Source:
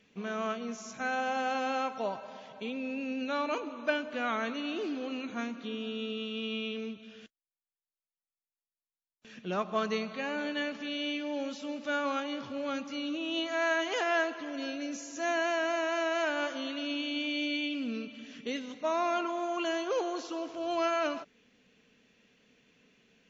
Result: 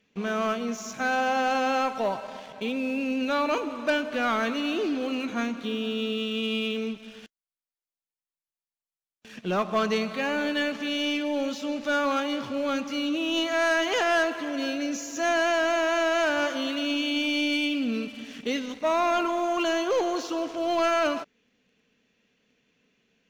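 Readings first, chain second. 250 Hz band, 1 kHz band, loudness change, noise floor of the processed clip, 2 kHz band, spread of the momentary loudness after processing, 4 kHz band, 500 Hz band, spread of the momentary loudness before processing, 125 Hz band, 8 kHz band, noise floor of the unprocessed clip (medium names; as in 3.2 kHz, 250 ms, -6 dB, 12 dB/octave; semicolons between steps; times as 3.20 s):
+7.0 dB, +6.5 dB, +6.5 dB, under -85 dBFS, +6.0 dB, 7 LU, +7.0 dB, +6.5 dB, 8 LU, +7.0 dB, no reading, under -85 dBFS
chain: waveshaping leveller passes 2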